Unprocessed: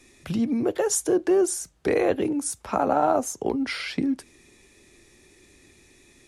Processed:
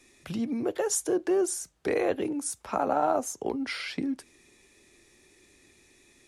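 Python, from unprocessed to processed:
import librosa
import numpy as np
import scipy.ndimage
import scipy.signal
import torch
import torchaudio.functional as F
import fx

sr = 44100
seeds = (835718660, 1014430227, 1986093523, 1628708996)

y = fx.low_shelf(x, sr, hz=230.0, db=-5.5)
y = y * 10.0 ** (-3.5 / 20.0)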